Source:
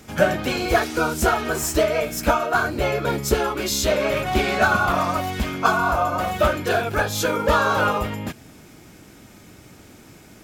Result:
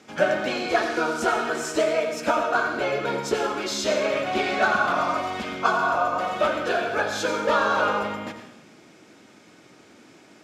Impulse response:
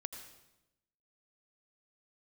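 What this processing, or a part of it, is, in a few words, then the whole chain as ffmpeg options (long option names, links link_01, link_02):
supermarket ceiling speaker: -filter_complex "[0:a]highpass=240,lowpass=6000[link_01];[1:a]atrim=start_sample=2205[link_02];[link_01][link_02]afir=irnorm=-1:irlink=0"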